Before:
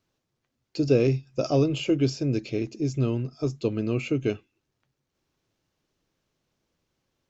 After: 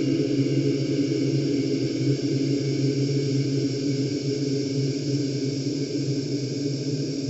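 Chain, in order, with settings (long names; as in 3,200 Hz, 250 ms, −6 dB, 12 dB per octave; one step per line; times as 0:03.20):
spring reverb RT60 1 s, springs 52 ms, chirp 50 ms, DRR 15.5 dB
extreme stretch with random phases 43×, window 0.50 s, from 0:02.01
bit reduction 12 bits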